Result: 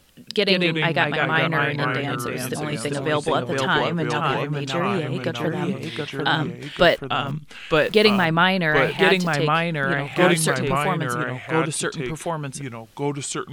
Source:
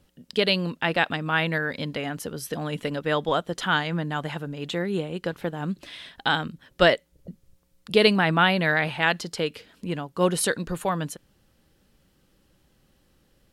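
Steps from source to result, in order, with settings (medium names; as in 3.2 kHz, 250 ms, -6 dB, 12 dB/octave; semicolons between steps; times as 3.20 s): 6.84–8.25 s: send-on-delta sampling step -39 dBFS; ever faster or slower copies 81 ms, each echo -2 st, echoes 2; tape noise reduction on one side only encoder only; trim +2 dB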